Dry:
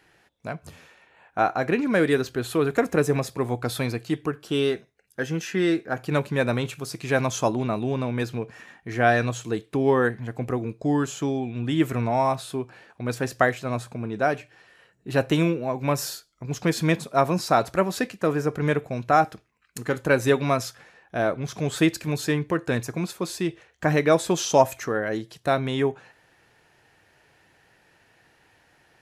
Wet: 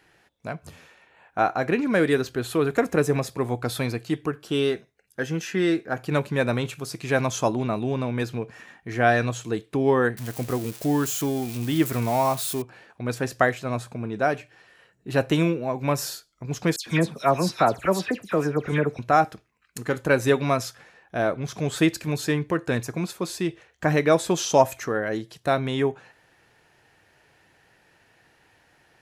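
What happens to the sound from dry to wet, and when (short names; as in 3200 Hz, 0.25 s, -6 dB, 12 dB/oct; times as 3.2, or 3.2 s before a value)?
10.17–12.62 switching spikes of -24.5 dBFS
16.76–18.99 dispersion lows, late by 0.104 s, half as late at 2900 Hz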